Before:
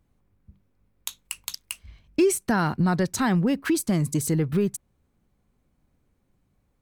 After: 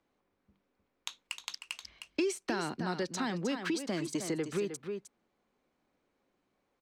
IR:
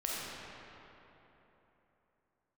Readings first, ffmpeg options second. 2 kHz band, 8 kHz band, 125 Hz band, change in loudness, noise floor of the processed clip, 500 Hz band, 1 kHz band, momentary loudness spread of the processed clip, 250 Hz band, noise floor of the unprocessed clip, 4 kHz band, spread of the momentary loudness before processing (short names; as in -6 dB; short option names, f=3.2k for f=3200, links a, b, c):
-7.5 dB, -11.0 dB, -17.0 dB, -11.5 dB, -80 dBFS, -8.5 dB, -10.0 dB, 10 LU, -11.5 dB, -71 dBFS, -3.5 dB, 15 LU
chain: -filter_complex "[0:a]acrossover=split=270 6600:gain=0.0708 1 0.0891[a][b][c];[a][b][c]amix=inputs=3:normalize=0,aecho=1:1:309:0.299,acrossover=split=480|2700[d][e][f];[d]acompressor=threshold=-33dB:ratio=4[g];[e]acompressor=threshold=-40dB:ratio=4[h];[f]acompressor=threshold=-39dB:ratio=4[i];[g][h][i]amix=inputs=3:normalize=0"